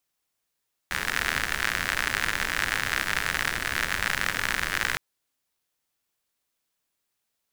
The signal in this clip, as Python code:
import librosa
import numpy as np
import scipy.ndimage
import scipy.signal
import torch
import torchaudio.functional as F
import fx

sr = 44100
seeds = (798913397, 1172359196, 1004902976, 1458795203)

y = fx.rain(sr, seeds[0], length_s=4.06, drops_per_s=85.0, hz=1700.0, bed_db=-8)